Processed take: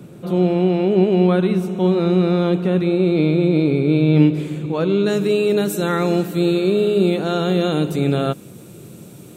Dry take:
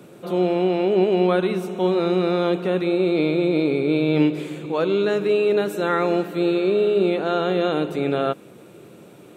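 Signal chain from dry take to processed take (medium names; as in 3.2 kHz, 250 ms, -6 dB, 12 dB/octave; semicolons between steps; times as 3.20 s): tone controls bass +14 dB, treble +2 dB, from 5.05 s treble +14 dB; trim -1 dB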